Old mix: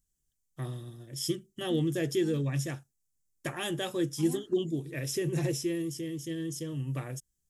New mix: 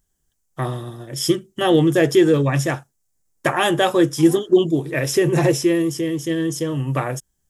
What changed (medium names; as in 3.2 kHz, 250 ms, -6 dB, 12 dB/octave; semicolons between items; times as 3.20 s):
first voice +9.5 dB; master: add peaking EQ 920 Hz +12 dB 2.3 oct